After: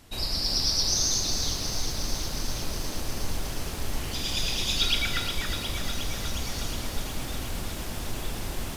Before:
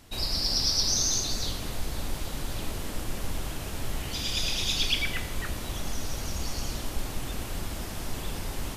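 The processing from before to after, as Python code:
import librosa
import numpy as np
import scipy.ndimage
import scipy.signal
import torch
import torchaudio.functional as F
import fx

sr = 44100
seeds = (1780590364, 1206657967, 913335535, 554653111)

y = fx.small_body(x, sr, hz=(1400.0, 3800.0), ring_ms=45, db=15, at=(4.8, 5.32))
y = fx.echo_crushed(y, sr, ms=361, feedback_pct=80, bits=8, wet_db=-8.0)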